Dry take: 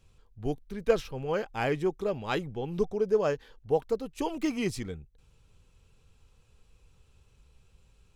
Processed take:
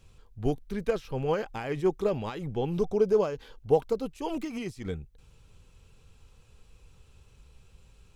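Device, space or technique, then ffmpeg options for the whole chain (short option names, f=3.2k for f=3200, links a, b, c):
de-esser from a sidechain: -filter_complex "[0:a]asplit=2[a][b];[b]highpass=6k,apad=whole_len=359740[c];[a][c]sidechaincompress=threshold=-57dB:ratio=16:attack=2.6:release=73,asettb=1/sr,asplit=3[d][e][f];[d]atrim=end=2.774[g];[e]atrim=start=2.77:end=4.12,asetpts=PTS-STARTPTS,afade=t=in:d=0.004:c=qsin,afade=t=out:st=1.346:d=0.004:c=qsin,bandreject=f=1.8k:w=7[h];[f]atrim=start=4.116[i];[g][h]acrossfade=d=0.004:c1=hsin:c2=qsin[j];[j][i]acrossfade=d=0.004:c1=qsin:c2=hsin,volume=5dB"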